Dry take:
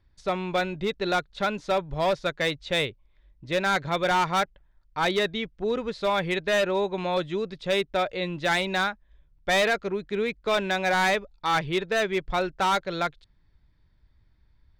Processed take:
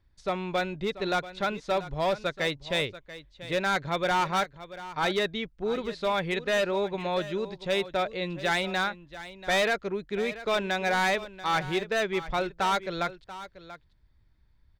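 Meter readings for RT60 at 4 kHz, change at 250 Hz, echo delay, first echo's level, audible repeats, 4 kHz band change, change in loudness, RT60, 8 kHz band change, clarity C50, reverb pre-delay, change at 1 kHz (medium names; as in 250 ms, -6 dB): no reverb, -2.5 dB, 686 ms, -15.0 dB, 1, -2.5 dB, -2.5 dB, no reverb, -2.5 dB, no reverb, no reverb, -2.5 dB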